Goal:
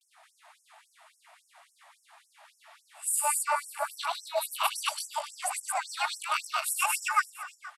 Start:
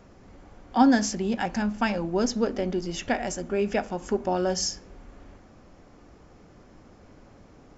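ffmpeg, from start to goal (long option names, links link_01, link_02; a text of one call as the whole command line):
ffmpeg -i in.wav -filter_complex "[0:a]areverse,asplit=2[link_01][link_02];[link_02]aecho=0:1:460:0.126[link_03];[link_01][link_03]amix=inputs=2:normalize=0,asetrate=70004,aresample=44100,atempo=0.629961,asplit=2[link_04][link_05];[link_05]aecho=0:1:102|224.5:0.631|0.891[link_06];[link_04][link_06]amix=inputs=2:normalize=0,afftfilt=real='re*gte(b*sr/1024,570*pow(5400/570,0.5+0.5*sin(2*PI*3.6*pts/sr)))':imag='im*gte(b*sr/1024,570*pow(5400/570,0.5+0.5*sin(2*PI*3.6*pts/sr)))':win_size=1024:overlap=0.75" out.wav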